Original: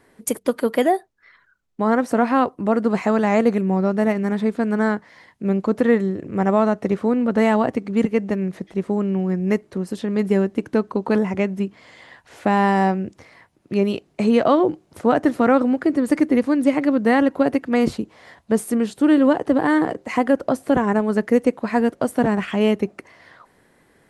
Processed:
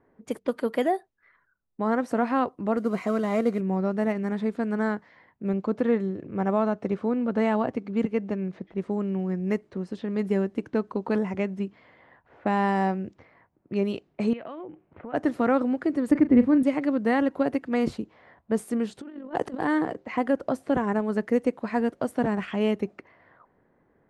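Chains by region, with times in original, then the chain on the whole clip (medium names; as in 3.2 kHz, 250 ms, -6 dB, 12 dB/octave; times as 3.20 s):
2.77–3.60 s: CVSD coder 64 kbps + comb of notches 870 Hz
5.53–8.65 s: high-pass 57 Hz + distance through air 52 m + band-stop 1.9 kHz, Q 16
14.33–15.14 s: compression, threshold -30 dBFS + resonant low-pass 2.6 kHz, resonance Q 2.3
16.11–16.63 s: tone controls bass +13 dB, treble -15 dB + doubling 37 ms -11.5 dB
18.97–19.65 s: treble shelf 4.6 kHz +9 dB + compressor with a negative ratio -22 dBFS, ratio -0.5 + AM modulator 47 Hz, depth 40%
whole clip: level-controlled noise filter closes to 1.2 kHz, open at -17.5 dBFS; treble shelf 6.3 kHz -6.5 dB; trim -6.5 dB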